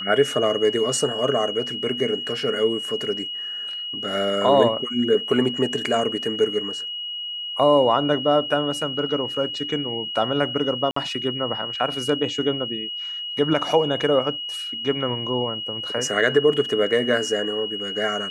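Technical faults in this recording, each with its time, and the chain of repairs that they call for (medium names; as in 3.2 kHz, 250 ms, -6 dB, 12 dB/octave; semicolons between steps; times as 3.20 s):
whine 2.9 kHz -28 dBFS
10.91–10.96 s: dropout 54 ms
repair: band-stop 2.9 kHz, Q 30; interpolate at 10.91 s, 54 ms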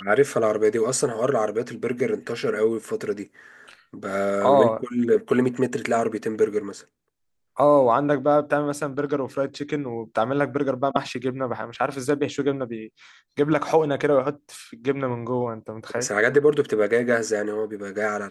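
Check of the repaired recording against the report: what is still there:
nothing left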